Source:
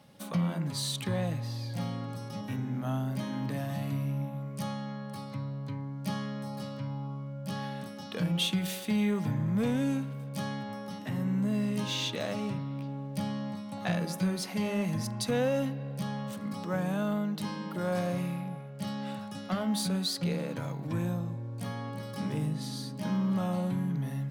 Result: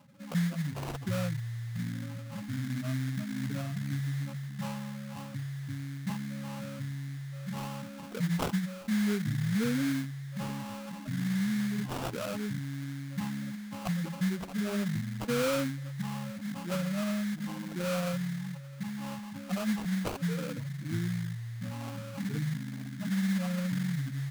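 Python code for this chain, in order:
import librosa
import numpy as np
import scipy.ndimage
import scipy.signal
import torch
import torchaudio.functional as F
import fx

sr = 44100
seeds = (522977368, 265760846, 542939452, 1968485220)

y = fx.spec_gate(x, sr, threshold_db=-10, keep='strong')
y = fx.sample_hold(y, sr, seeds[0], rate_hz=1900.0, jitter_pct=20)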